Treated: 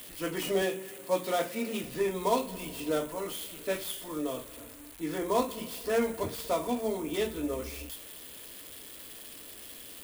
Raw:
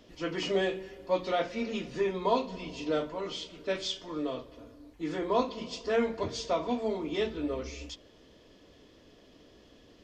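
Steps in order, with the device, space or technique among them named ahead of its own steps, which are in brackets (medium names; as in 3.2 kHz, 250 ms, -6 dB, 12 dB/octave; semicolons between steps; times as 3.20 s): budget class-D amplifier (dead-time distortion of 0.1 ms; zero-crossing glitches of -30.5 dBFS); 0.62–1.84 s: high-pass 110 Hz 24 dB/octave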